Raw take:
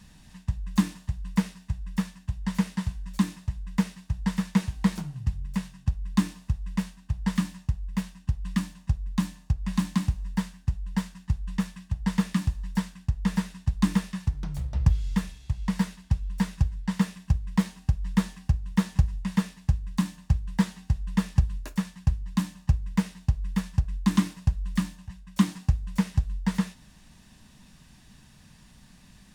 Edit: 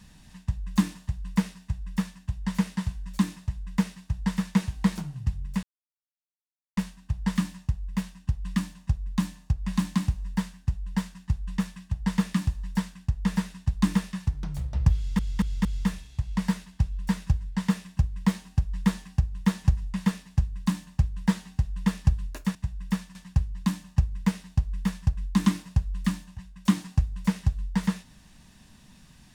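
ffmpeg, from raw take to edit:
ffmpeg -i in.wav -filter_complex "[0:a]asplit=8[link_01][link_02][link_03][link_04][link_05][link_06][link_07][link_08];[link_01]atrim=end=5.63,asetpts=PTS-STARTPTS,afade=type=out:start_time=5.626:duration=0.004:curve=hsin[link_09];[link_02]atrim=start=5.63:end=6.77,asetpts=PTS-STARTPTS,volume=0[link_10];[link_03]atrim=start=6.77:end=15.192,asetpts=PTS-STARTPTS,afade=type=in:duration=0.004:curve=hsin[link_11];[link_04]atrim=start=14.958:end=15.192[link_12];[link_05]atrim=start=14.958:end=15.192[link_13];[link_06]atrim=start=14.958:end=21.862[link_14];[link_07]atrim=start=1.608:end=2.212[link_15];[link_08]atrim=start=21.858[link_16];[link_09][link_10][link_11]concat=n=3:v=0:a=1[link_17];[link_17][link_12]acrossfade=duration=0.004:curve1=hsin:curve2=hsin[link_18];[link_18][link_13]acrossfade=duration=0.004:curve1=hsin:curve2=hsin[link_19];[link_19][link_14]acrossfade=duration=0.004:curve1=hsin:curve2=hsin[link_20];[link_20][link_15]acrossfade=duration=0.004:curve1=hsin:curve2=hsin[link_21];[link_21][link_16]acrossfade=duration=0.004:curve1=hsin:curve2=hsin" out.wav

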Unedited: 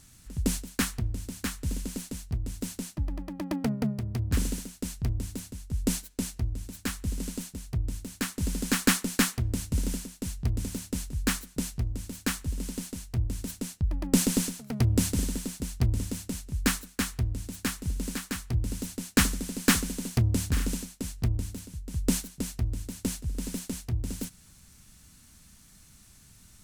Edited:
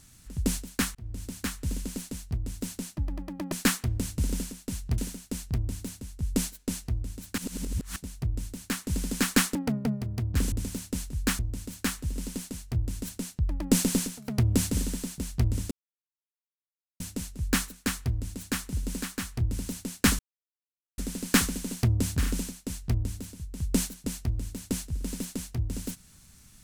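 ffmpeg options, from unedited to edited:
ffmpeg -i in.wav -filter_complex "[0:a]asplit=11[link_01][link_02][link_03][link_04][link_05][link_06][link_07][link_08][link_09][link_10][link_11];[link_01]atrim=end=0.95,asetpts=PTS-STARTPTS,afade=type=out:start_time=0.946:duration=0.004:curve=hsin[link_12];[link_02]atrim=start=0.95:end=3.522,asetpts=PTS-STARTPTS,afade=type=in:duration=0.29[link_13];[link_03]atrim=start=9.058:end=10.522[link_14];[link_04]atrim=start=4.488:end=6.892[link_15];[link_05]atrim=start=6.888:end=7.472,asetpts=PTS-STARTPTS,areverse[link_16];[link_06]atrim=start=7.468:end=9.062[link_17];[link_07]atrim=start=3.518:end=4.492[link_18];[link_08]atrim=start=10.518:end=11.392[link_19];[link_09]atrim=start=11.808:end=16.13,asetpts=PTS-STARTPTS,afade=type=out:start_time=4.318:duration=0.004:curve=hsin,apad=pad_dur=1.29[link_20];[link_10]atrim=start=16.13:end=19.32,asetpts=PTS-STARTPTS,afade=type=in:duration=0.004:curve=hsin,afade=type=out:start_time=3.186:duration=0.004:curve=hsin,apad=pad_dur=0.79[link_21];[link_11]atrim=start=19.32,asetpts=PTS-STARTPTS,afade=type=in:duration=0.004:curve=hsin[link_22];[link_12][link_13]concat=n=2:v=0:a=1[link_23];[link_23][link_14]acrossfade=duration=0.004:curve1=hsin:curve2=hsin[link_24];[link_24][link_15]acrossfade=duration=0.004:curve1=hsin:curve2=hsin[link_25];[link_25][link_16]acrossfade=duration=0.004:curve1=hsin:curve2=hsin[link_26];[link_26][link_17]acrossfade=duration=0.004:curve1=hsin:curve2=hsin[link_27];[link_27][link_18]acrossfade=duration=0.004:curve1=hsin:curve2=hsin[link_28];[link_28][link_19]acrossfade=duration=0.004:curve1=hsin:curve2=hsin[link_29];[link_20][link_21][link_22]concat=n=3:v=0:a=1[link_30];[link_29][link_30]acrossfade=duration=0.004:curve1=hsin:curve2=hsin" out.wav

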